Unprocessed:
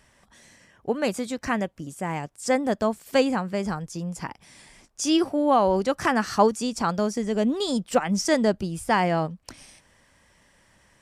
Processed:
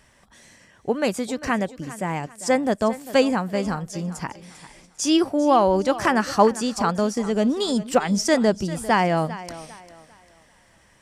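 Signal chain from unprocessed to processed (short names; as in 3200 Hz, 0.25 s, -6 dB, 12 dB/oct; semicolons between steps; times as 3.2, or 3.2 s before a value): thinning echo 0.398 s, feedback 34%, high-pass 160 Hz, level -15.5 dB; gain +2.5 dB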